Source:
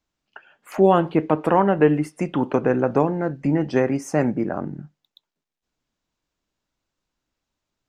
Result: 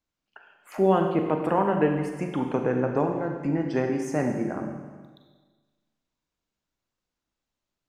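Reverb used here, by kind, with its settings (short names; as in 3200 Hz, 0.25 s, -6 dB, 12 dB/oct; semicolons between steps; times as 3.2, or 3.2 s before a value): Schroeder reverb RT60 1.4 s, combs from 32 ms, DRR 3.5 dB; gain -6.5 dB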